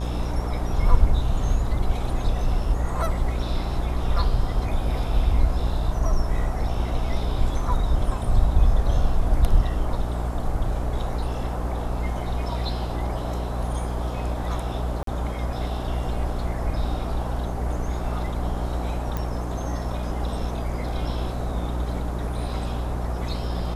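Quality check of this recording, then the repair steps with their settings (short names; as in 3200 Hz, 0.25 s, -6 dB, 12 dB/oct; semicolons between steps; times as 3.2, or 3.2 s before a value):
buzz 60 Hz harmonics 22 -28 dBFS
15.03–15.07 gap 43 ms
19.17 pop -15 dBFS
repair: de-click; de-hum 60 Hz, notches 22; interpolate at 15.03, 43 ms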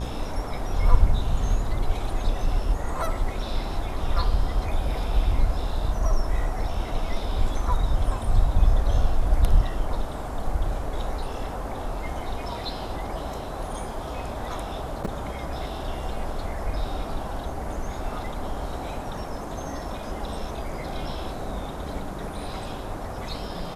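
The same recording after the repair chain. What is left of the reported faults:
19.17 pop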